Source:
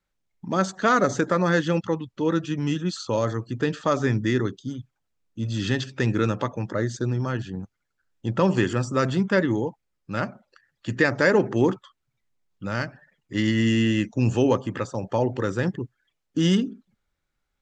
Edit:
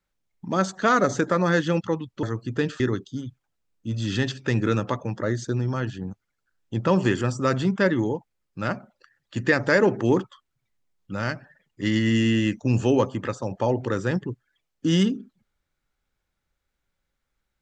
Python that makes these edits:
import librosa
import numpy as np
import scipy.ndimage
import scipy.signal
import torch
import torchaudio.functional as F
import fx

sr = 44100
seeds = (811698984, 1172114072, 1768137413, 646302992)

y = fx.edit(x, sr, fx.cut(start_s=2.23, length_s=1.04),
    fx.cut(start_s=3.84, length_s=0.48), tone=tone)